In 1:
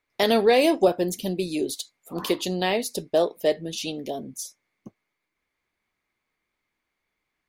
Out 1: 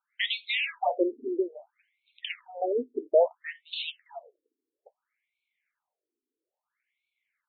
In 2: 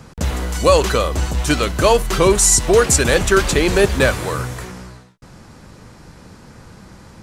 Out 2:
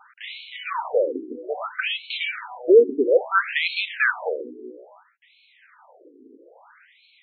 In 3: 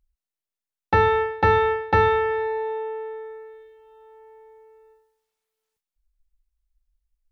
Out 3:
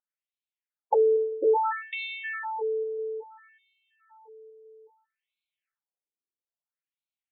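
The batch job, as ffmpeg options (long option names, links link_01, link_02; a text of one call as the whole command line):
ffmpeg -i in.wav -af "bandreject=frequency=1100:width=8.2,afftfilt=real='re*between(b*sr/1024,320*pow(3100/320,0.5+0.5*sin(2*PI*0.6*pts/sr))/1.41,320*pow(3100/320,0.5+0.5*sin(2*PI*0.6*pts/sr))*1.41)':imag='im*between(b*sr/1024,320*pow(3100/320,0.5+0.5*sin(2*PI*0.6*pts/sr))/1.41,320*pow(3100/320,0.5+0.5*sin(2*PI*0.6*pts/sr))*1.41)':win_size=1024:overlap=0.75,volume=1dB" out.wav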